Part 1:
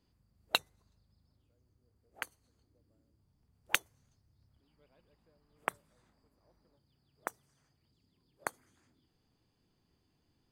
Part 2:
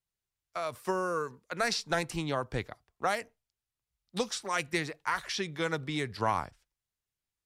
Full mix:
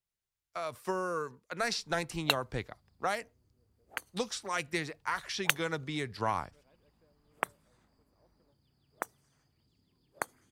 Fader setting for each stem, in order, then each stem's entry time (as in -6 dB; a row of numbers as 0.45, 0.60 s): +2.0, -2.5 dB; 1.75, 0.00 s